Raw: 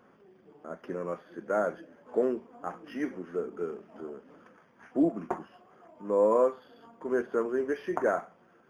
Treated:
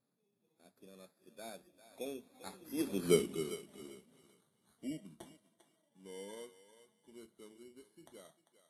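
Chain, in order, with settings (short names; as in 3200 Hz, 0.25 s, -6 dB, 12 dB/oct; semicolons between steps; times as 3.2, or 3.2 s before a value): FFT order left unsorted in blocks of 16 samples; Doppler pass-by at 3.08, 26 m/s, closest 2.3 m; tone controls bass +10 dB, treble +5 dB; on a send: thinning echo 0.397 s, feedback 22%, high-pass 590 Hz, level -12 dB; on the sum: gain +4.5 dB; Vorbis 48 kbps 32000 Hz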